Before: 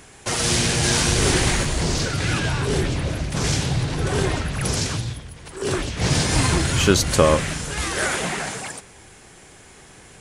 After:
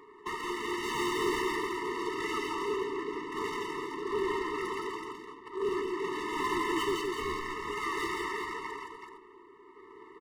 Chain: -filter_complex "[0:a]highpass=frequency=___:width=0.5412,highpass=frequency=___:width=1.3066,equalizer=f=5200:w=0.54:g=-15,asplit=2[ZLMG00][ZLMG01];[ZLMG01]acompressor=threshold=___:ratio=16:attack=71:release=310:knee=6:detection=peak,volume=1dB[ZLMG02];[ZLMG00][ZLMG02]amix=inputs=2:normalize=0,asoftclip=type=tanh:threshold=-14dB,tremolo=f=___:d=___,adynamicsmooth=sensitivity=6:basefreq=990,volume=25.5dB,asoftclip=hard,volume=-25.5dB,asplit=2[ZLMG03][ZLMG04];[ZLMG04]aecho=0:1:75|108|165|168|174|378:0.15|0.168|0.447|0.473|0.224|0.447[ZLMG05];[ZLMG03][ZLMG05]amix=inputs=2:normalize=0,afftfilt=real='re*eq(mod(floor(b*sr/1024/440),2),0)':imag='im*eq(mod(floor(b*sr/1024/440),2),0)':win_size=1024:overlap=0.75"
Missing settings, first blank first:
420, 420, -42dB, 0.9, 0.36